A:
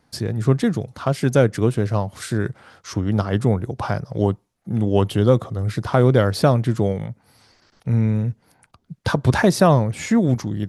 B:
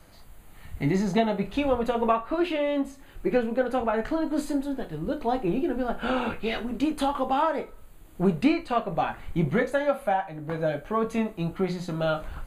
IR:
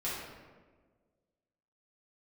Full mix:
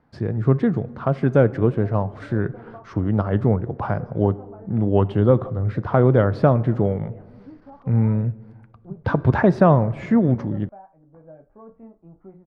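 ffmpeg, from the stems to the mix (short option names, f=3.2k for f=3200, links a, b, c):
-filter_complex "[0:a]volume=-0.5dB,asplit=2[a][b];[b]volume=-21dB[c];[1:a]lowpass=1k,adelay=650,volume=-17.5dB[d];[2:a]atrim=start_sample=2205[e];[c][e]afir=irnorm=-1:irlink=0[f];[a][d][f]amix=inputs=3:normalize=0,lowpass=1.6k"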